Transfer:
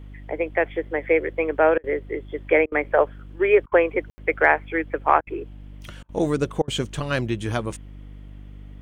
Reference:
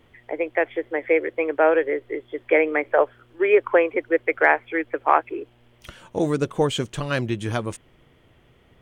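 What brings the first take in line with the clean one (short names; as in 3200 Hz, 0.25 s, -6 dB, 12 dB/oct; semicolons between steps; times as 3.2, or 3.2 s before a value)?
de-hum 49.8 Hz, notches 6; room tone fill 4.1–4.18; interpolate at 1.78/2.66/3.66/5.21/6.03/6.62, 57 ms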